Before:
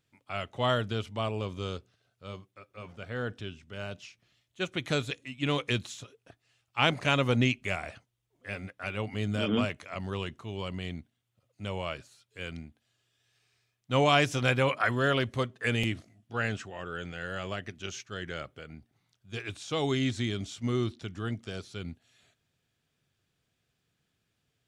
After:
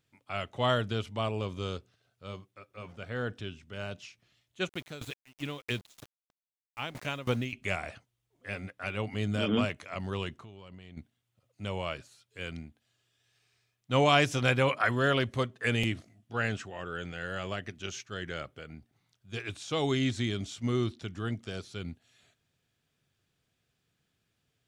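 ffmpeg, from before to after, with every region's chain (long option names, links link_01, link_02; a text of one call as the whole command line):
ffmpeg -i in.wav -filter_complex "[0:a]asettb=1/sr,asplit=3[link_01][link_02][link_03];[link_01]atrim=end=4.694[link_04];[link_02]atrim=start=4.69:end=7.53,asetpts=PTS-STARTPTS,afade=type=in:duration=0.004:curve=qsin,afade=type=out:start_time=2.836:duration=0.004:curve=qsin,aeval=exprs='val(0)*gte(abs(val(0)),0.0106)':channel_layout=same,aeval=exprs='val(0)*pow(10,-19*if(lt(mod(3.1*n/s,1),2*abs(3.1)/1000),1-mod(3.1*n/s,1)/(2*abs(3.1)/1000),(mod(3.1*n/s,1)-2*abs(3.1)/1000)/(1-2*abs(3.1)/1000))/20)':channel_layout=same[link_05];[link_03]atrim=start=7.526[link_06];[link_04][link_05]acrossfade=duration=0.004:curve1=hsin:curve2=qsin[link_07];[link_07][link_06]acrossfade=duration=0.004:curve1=qsin:curve2=hsin,asettb=1/sr,asplit=3[link_08][link_09][link_10];[link_08]atrim=end=10.374[link_11];[link_09]atrim=start=10.37:end=10.97,asetpts=PTS-STARTPTS,afade=type=in:duration=0.004:curve=qsin,afade=type=out:start_time=0.596:duration=0.004:curve=qsin,highshelf=frequency=5400:gain=-6,acompressor=threshold=-44dB:ratio=10:attack=3.2:release=140:knee=1:detection=peak[link_12];[link_10]atrim=start=10.966[link_13];[link_11][link_12]acrossfade=duration=0.004:curve1=hsin:curve2=qsin[link_14];[link_14][link_13]acrossfade=duration=0.004:curve1=qsin:curve2=hsin" out.wav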